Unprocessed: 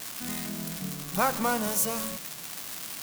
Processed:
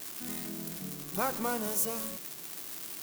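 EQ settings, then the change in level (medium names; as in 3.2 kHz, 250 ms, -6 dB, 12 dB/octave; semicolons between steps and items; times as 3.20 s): peaking EQ 360 Hz +10 dB 0.64 oct; treble shelf 9.9 kHz +6.5 dB; -7.5 dB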